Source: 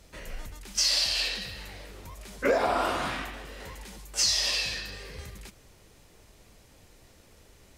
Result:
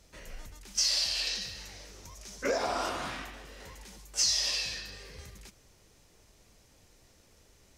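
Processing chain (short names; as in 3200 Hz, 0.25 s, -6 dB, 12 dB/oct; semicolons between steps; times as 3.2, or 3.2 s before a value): bell 5900 Hz +5 dB 0.71 oct, from 1.27 s +14.5 dB, from 2.89 s +5.5 dB; gain -6 dB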